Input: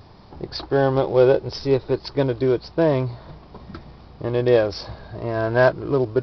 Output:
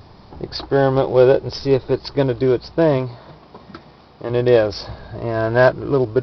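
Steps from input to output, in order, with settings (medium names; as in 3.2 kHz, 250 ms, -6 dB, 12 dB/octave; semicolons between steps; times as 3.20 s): 2.97–4.29 s: high-pass 170 Hz -> 360 Hz 6 dB/octave; trim +3 dB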